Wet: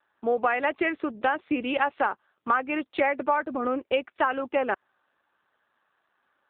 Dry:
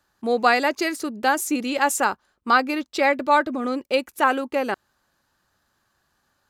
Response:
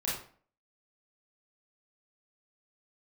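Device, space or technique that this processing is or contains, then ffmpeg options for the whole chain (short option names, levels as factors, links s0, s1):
voicemail: -filter_complex "[0:a]asettb=1/sr,asplit=3[s0][s1][s2];[s0]atrim=end=2.504[s3];[s1]atrim=start=2.5:end=3.43,asetpts=PTS-STARTPTS,afade=t=in:d=0.004:c=qsin,afade=t=out:st=0.926:d=0.004:c=qsin,highpass=f=54:w=0.5412,highpass=f=54:w=1.3066[s4];[s2]atrim=start=3.426[s5];[s3][s4]acrossfade=d=0.004:c1=hsin:c2=qsin[s6];[s6][s5]acrossfade=d=0.004:c1=qsin:c2=hsin,highpass=330,lowpass=3300,acompressor=threshold=0.0891:ratio=8,volume=1.26" -ar 8000 -c:a libopencore_amrnb -b:a 7400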